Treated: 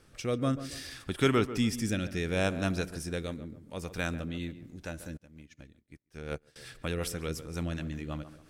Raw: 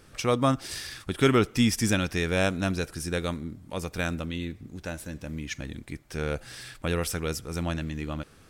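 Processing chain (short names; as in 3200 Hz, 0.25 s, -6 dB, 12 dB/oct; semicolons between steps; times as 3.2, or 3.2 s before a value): rotary speaker horn 0.65 Hz, later 5.5 Hz, at 3.84; tape echo 0.14 s, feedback 40%, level -11 dB, low-pass 1400 Hz; 5.17–6.56 upward expander 2.5:1, over -50 dBFS; gain -3 dB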